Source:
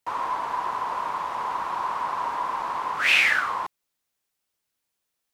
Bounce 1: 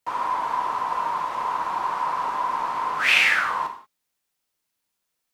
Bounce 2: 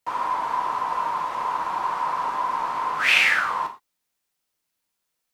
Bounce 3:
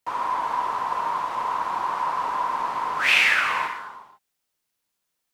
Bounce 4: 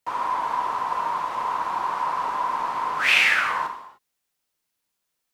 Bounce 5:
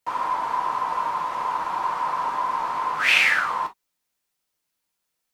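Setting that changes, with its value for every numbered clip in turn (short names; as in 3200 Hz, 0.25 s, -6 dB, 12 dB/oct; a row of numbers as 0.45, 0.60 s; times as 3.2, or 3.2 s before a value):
non-linear reverb, gate: 210, 140, 530, 330, 80 ms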